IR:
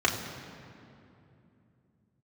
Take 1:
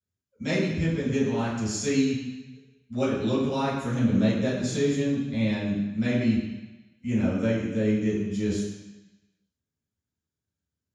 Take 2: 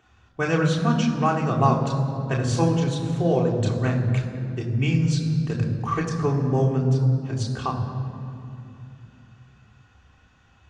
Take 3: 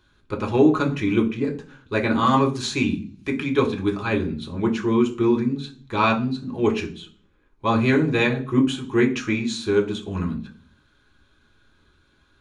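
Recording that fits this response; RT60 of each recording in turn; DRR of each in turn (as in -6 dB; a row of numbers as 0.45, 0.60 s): 2; 1.0, 2.8, 0.40 s; -11.0, -2.5, 0.0 dB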